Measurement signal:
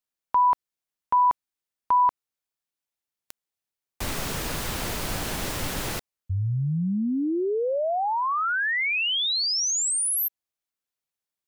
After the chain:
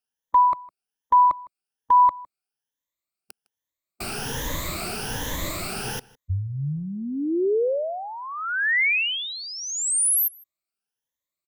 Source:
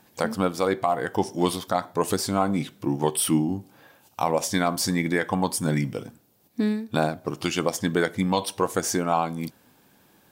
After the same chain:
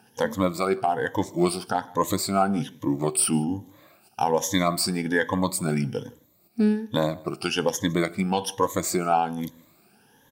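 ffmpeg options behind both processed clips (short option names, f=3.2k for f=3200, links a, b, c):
-filter_complex "[0:a]afftfilt=real='re*pow(10,15/40*sin(2*PI*(1.1*log(max(b,1)*sr/1024/100)/log(2)-(1.2)*(pts-256)/sr)))':imag='im*pow(10,15/40*sin(2*PI*(1.1*log(max(b,1)*sr/1024/100)/log(2)-(1.2)*(pts-256)/sr)))':win_size=1024:overlap=0.75,asplit=2[a][b];[b]adelay=157.4,volume=-23dB,highshelf=f=4k:g=-3.54[c];[a][c]amix=inputs=2:normalize=0,volume=-2.5dB"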